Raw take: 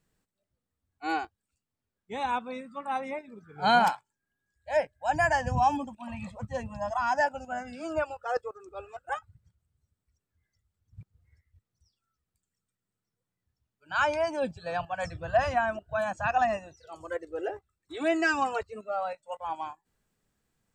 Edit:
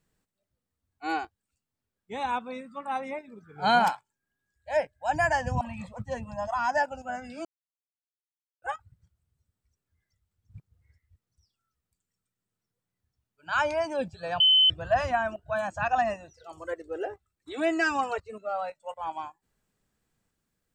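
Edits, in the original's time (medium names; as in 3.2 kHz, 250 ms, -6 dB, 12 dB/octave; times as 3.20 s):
5.61–6.04 s: delete
7.88–9.05 s: mute
14.83–15.13 s: bleep 3.05 kHz -16 dBFS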